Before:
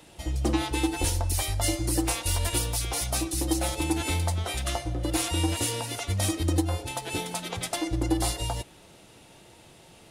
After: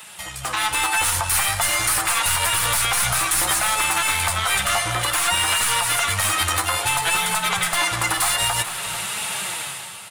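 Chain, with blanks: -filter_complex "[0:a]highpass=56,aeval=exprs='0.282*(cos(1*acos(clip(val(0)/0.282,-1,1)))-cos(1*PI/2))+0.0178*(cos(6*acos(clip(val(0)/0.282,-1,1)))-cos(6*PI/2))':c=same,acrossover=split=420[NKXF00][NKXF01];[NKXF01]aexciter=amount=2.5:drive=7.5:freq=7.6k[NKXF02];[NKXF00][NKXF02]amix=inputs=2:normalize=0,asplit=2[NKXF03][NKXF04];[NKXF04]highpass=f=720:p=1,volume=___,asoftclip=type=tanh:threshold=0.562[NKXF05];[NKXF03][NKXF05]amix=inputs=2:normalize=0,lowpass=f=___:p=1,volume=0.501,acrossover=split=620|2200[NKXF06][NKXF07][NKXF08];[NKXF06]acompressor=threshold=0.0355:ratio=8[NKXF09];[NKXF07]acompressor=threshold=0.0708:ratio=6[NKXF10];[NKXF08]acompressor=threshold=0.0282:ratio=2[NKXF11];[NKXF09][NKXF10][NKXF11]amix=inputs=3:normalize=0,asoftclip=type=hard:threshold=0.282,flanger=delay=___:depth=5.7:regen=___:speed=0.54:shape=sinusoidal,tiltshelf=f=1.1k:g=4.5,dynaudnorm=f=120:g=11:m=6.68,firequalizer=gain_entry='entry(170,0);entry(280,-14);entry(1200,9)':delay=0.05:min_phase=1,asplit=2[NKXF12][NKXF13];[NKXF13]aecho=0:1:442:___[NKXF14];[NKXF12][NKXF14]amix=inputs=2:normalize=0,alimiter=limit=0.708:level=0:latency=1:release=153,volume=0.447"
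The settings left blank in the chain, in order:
20, 5.7k, 4.6, 53, 0.168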